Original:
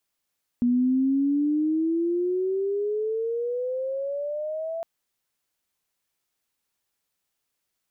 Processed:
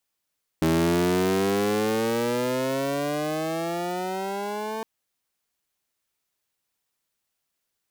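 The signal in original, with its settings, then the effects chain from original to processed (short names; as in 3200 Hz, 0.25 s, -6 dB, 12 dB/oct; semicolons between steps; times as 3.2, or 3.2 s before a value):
chirp logarithmic 240 Hz -> 670 Hz -18 dBFS -> -28 dBFS 4.21 s
cycle switcher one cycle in 3, inverted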